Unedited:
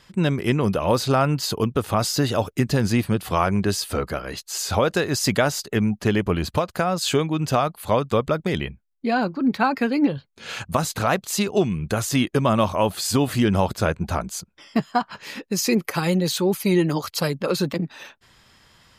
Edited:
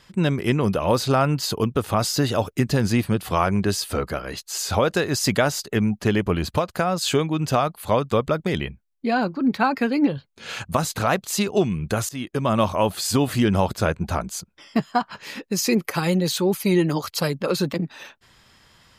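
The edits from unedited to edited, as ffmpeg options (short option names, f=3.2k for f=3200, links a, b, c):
-filter_complex "[0:a]asplit=2[a][b];[a]atrim=end=12.09,asetpts=PTS-STARTPTS,afade=t=out:st=12.086:d=0.004:c=hsin:silence=0.133352[c];[b]atrim=start=12.09,asetpts=PTS-STARTPTS,afade=t=in:d=0.52:silence=0.133352[d];[c][d]concat=n=2:v=0:a=1"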